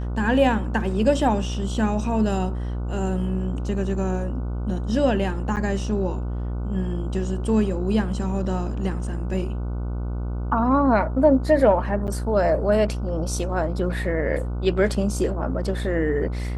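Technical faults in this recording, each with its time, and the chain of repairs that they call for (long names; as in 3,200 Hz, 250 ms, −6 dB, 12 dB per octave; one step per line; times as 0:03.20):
mains buzz 60 Hz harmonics 25 −27 dBFS
0:05.56–0:05.57: drop-out 8.8 ms
0:12.07–0:12.08: drop-out 9 ms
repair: hum removal 60 Hz, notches 25
repair the gap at 0:05.56, 8.8 ms
repair the gap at 0:12.07, 9 ms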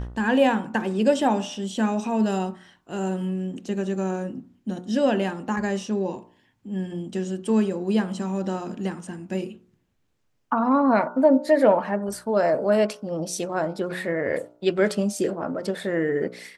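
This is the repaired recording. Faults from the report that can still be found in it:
none of them is left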